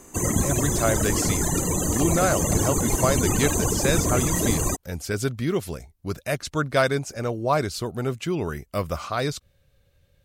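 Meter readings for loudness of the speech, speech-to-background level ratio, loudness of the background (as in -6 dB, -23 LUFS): -27.0 LUFS, -3.5 dB, -23.5 LUFS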